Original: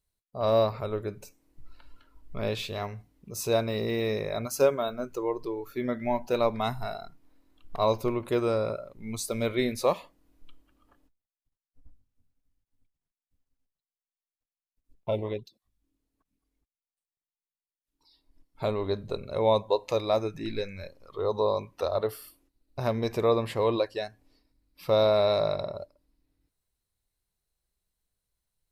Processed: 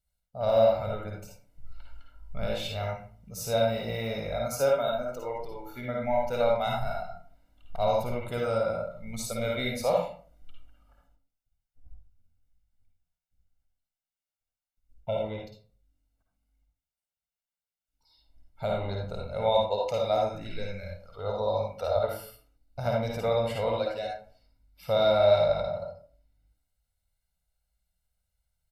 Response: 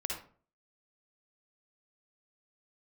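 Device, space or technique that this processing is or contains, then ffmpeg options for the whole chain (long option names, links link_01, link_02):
microphone above a desk: -filter_complex "[0:a]aecho=1:1:1.4:0.83[link_01];[1:a]atrim=start_sample=2205[link_02];[link_01][link_02]afir=irnorm=-1:irlink=0,volume=-4dB"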